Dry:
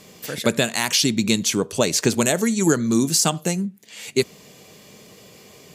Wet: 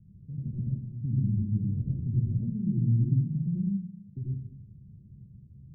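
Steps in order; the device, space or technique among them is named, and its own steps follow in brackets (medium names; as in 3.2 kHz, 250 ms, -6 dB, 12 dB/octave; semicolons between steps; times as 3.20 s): club heard from the street (peak limiter -13 dBFS, peak gain reduction 9.5 dB; low-pass 130 Hz 24 dB/octave; reverberation RT60 0.70 s, pre-delay 71 ms, DRR -3 dB); trim +5.5 dB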